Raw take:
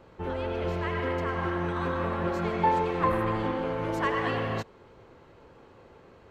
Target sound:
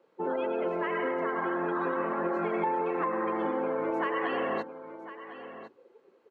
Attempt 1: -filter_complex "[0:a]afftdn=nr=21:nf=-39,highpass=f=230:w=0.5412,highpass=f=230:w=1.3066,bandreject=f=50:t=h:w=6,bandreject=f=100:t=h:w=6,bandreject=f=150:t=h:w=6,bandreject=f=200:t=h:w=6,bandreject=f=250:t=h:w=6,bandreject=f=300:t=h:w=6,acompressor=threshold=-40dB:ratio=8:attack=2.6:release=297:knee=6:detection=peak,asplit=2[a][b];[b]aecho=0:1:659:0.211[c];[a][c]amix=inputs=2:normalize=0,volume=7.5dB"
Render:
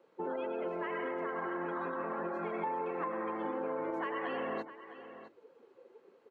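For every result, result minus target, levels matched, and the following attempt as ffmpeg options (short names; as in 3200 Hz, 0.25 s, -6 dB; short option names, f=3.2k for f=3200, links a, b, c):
echo 0.396 s early; compressor: peak gain reduction +6.5 dB
-filter_complex "[0:a]afftdn=nr=21:nf=-39,highpass=f=230:w=0.5412,highpass=f=230:w=1.3066,bandreject=f=50:t=h:w=6,bandreject=f=100:t=h:w=6,bandreject=f=150:t=h:w=6,bandreject=f=200:t=h:w=6,bandreject=f=250:t=h:w=6,bandreject=f=300:t=h:w=6,acompressor=threshold=-40dB:ratio=8:attack=2.6:release=297:knee=6:detection=peak,asplit=2[a][b];[b]aecho=0:1:1055:0.211[c];[a][c]amix=inputs=2:normalize=0,volume=7.5dB"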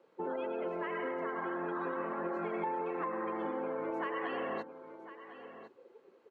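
compressor: peak gain reduction +6.5 dB
-filter_complex "[0:a]afftdn=nr=21:nf=-39,highpass=f=230:w=0.5412,highpass=f=230:w=1.3066,bandreject=f=50:t=h:w=6,bandreject=f=100:t=h:w=6,bandreject=f=150:t=h:w=6,bandreject=f=200:t=h:w=6,bandreject=f=250:t=h:w=6,bandreject=f=300:t=h:w=6,acompressor=threshold=-32.5dB:ratio=8:attack=2.6:release=297:knee=6:detection=peak,asplit=2[a][b];[b]aecho=0:1:1055:0.211[c];[a][c]amix=inputs=2:normalize=0,volume=7.5dB"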